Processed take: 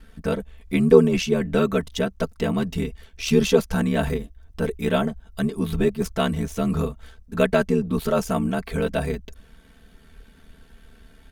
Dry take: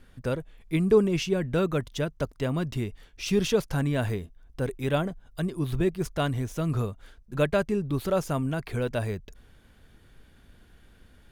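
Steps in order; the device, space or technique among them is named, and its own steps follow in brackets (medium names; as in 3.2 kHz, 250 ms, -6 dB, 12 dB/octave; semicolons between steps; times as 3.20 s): ring-modulated robot voice (ring modulator 38 Hz; comb 4.5 ms, depth 75%); trim +6 dB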